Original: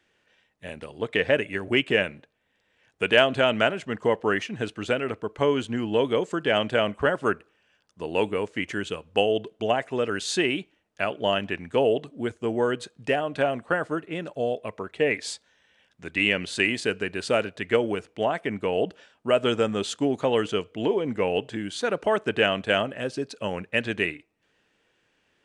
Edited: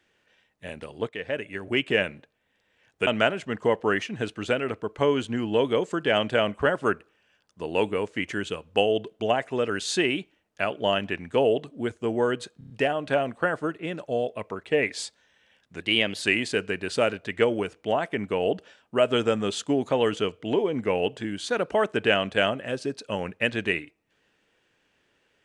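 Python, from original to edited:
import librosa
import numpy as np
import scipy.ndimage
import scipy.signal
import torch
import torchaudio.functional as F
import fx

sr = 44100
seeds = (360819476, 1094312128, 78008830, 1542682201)

y = fx.edit(x, sr, fx.fade_in_from(start_s=1.09, length_s=1.0, floor_db=-13.5),
    fx.cut(start_s=3.07, length_s=0.4),
    fx.stutter(start_s=12.98, slice_s=0.03, count=5),
    fx.speed_span(start_s=16.08, length_s=0.46, speed=1.1), tone=tone)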